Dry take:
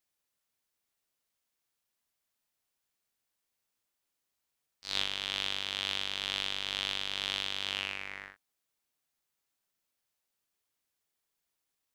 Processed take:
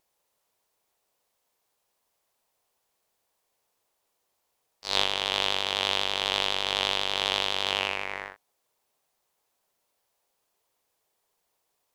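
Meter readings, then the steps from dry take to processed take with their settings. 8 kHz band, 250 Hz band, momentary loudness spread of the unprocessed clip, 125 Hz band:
+6.5 dB, +7.5 dB, 8 LU, +6.5 dB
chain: flat-topped bell 650 Hz +8.5 dB
pitch vibrato 12 Hz 74 cents
level +6.5 dB

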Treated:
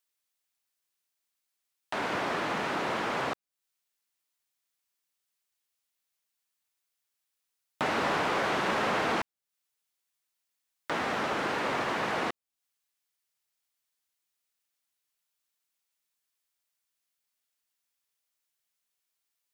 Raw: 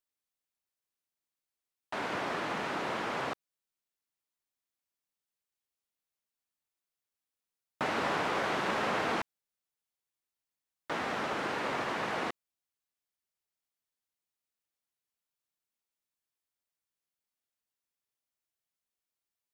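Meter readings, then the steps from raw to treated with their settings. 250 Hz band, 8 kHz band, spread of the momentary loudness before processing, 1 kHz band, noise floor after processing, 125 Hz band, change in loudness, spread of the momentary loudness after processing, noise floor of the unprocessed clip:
+3.5 dB, +3.5 dB, 8 LU, +3.0 dB, −84 dBFS, +3.5 dB, +3.5 dB, 8 LU, below −85 dBFS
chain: leveller curve on the samples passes 1
one half of a high-frequency compander encoder only

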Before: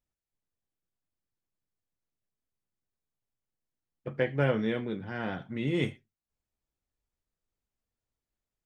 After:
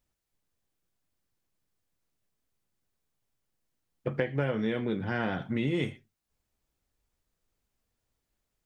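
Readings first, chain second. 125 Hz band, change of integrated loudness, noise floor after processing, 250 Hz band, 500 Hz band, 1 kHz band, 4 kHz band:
0.0 dB, 0.0 dB, −83 dBFS, +1.0 dB, −1.0 dB, +1.0 dB, 0.0 dB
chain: downward compressor 6 to 1, threshold −34 dBFS, peak gain reduction 12.5 dB
level +8 dB

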